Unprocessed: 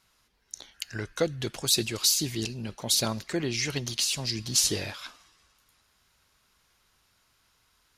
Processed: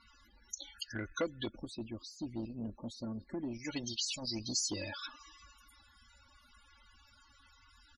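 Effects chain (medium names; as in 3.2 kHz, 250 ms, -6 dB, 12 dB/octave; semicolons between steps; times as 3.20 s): comb 3.5 ms, depth 72%; compression 2:1, threshold -51 dBFS, peak gain reduction 18.5 dB; 1.49–3.65 s: FFT filter 230 Hz 0 dB, 730 Hz -12 dB, 7.3 kHz -18 dB; loudest bins only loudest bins 32; transformer saturation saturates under 710 Hz; trim +7.5 dB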